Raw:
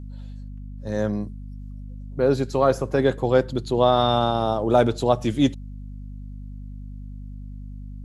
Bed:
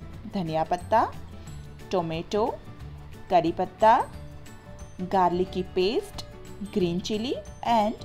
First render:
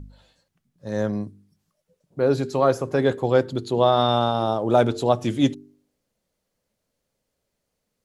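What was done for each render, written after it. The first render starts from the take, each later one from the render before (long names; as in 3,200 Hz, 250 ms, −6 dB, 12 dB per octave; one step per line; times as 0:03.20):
hum removal 50 Hz, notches 9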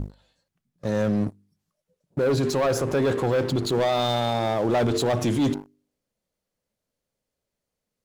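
leveller curve on the samples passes 3
brickwall limiter −17 dBFS, peak gain reduction 11.5 dB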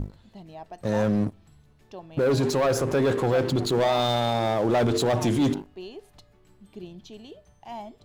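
mix in bed −15.5 dB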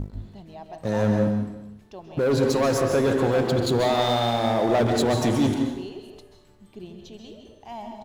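single-tap delay 347 ms −24 dB
dense smooth reverb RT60 0.8 s, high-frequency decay 0.85×, pre-delay 120 ms, DRR 4 dB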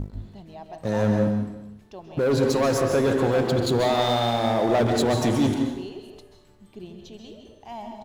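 no processing that can be heard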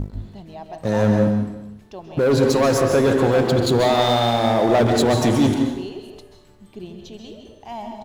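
level +4.5 dB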